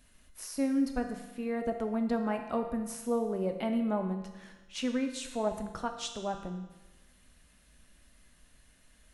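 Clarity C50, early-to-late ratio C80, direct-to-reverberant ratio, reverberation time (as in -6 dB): 7.5 dB, 9.5 dB, 5.0 dB, 1.2 s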